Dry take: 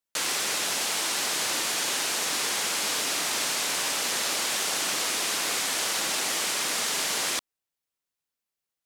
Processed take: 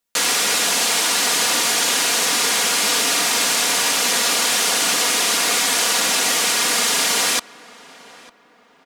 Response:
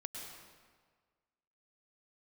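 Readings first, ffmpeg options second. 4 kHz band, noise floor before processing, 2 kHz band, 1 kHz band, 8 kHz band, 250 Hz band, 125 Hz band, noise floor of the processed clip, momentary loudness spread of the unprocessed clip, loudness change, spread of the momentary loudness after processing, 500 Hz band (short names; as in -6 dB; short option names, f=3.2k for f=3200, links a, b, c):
+9.5 dB, under -85 dBFS, +9.5 dB, +9.5 dB, +9.5 dB, +9.5 dB, +7.5 dB, -54 dBFS, 0 LU, +9.5 dB, 0 LU, +9.5 dB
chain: -filter_complex "[0:a]aecho=1:1:4.2:0.48,asplit=2[a][b];[b]adelay=901,lowpass=f=1.8k:p=1,volume=-19dB,asplit=2[c][d];[d]adelay=901,lowpass=f=1.8k:p=1,volume=0.4,asplit=2[e][f];[f]adelay=901,lowpass=f=1.8k:p=1,volume=0.4[g];[c][e][g]amix=inputs=3:normalize=0[h];[a][h]amix=inputs=2:normalize=0,volume=8.5dB"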